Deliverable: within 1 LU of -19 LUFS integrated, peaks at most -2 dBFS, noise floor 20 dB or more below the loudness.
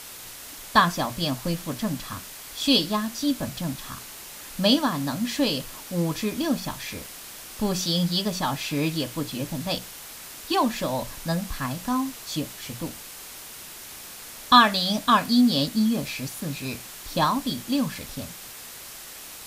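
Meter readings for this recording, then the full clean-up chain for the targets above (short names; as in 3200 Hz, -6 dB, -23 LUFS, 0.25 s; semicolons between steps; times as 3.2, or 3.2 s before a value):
noise floor -41 dBFS; noise floor target -45 dBFS; loudness -25.0 LUFS; peak -3.5 dBFS; loudness target -19.0 LUFS
-> denoiser 6 dB, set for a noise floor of -41 dBFS; gain +6 dB; limiter -2 dBFS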